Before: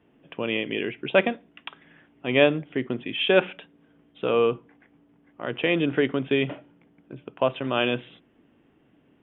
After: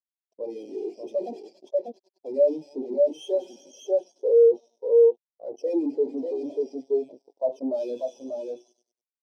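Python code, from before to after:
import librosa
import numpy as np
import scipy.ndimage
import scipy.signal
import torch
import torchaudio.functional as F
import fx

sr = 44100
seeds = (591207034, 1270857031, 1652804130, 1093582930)

y = fx.diode_clip(x, sr, knee_db=-16.5)
y = fx.hum_notches(y, sr, base_hz=50, count=9)
y = fx.echo_wet_highpass(y, sr, ms=98, feedback_pct=78, hz=2300.0, wet_db=-6.5)
y = np.maximum(y, 0.0)
y = fx.spec_gate(y, sr, threshold_db=-25, keep='strong')
y = fx.high_shelf(y, sr, hz=3200.0, db=8.0)
y = fx.rider(y, sr, range_db=4, speed_s=2.0)
y = y + 10.0 ** (-7.0 / 20.0) * np.pad(y, (int(591 * sr / 1000.0), 0))[:len(y)]
y = fx.fuzz(y, sr, gain_db=37.0, gate_db=-40.0)
y = scipy.signal.sosfilt(scipy.signal.butter(2, 290.0, 'highpass', fs=sr, output='sos'), y)
y = fx.band_shelf(y, sr, hz=1900.0, db=-12.5, octaves=1.7)
y = fx.spectral_expand(y, sr, expansion=2.5)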